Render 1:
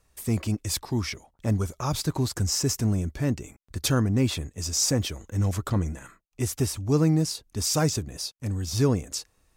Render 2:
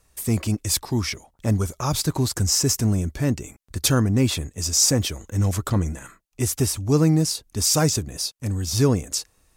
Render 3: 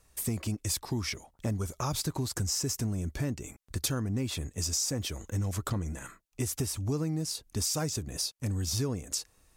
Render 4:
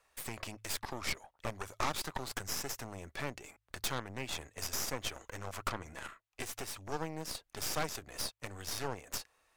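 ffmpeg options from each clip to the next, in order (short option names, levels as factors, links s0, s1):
-af "equalizer=f=11000:t=o:w=1.7:g=4.5,volume=1.5"
-af "acompressor=threshold=0.0501:ratio=6,volume=0.75"
-filter_complex "[0:a]acrossover=split=500 3500:gain=0.1 1 0.251[s0][s1][s2];[s0][s1][s2]amix=inputs=3:normalize=0,bandreject=f=53.69:t=h:w=4,bandreject=f=107.38:t=h:w=4,aeval=exprs='0.0794*(cos(1*acos(clip(val(0)/0.0794,-1,1)))-cos(1*PI/2))+0.0178*(cos(8*acos(clip(val(0)/0.0794,-1,1)))-cos(8*PI/2))':c=same,volume=1.12"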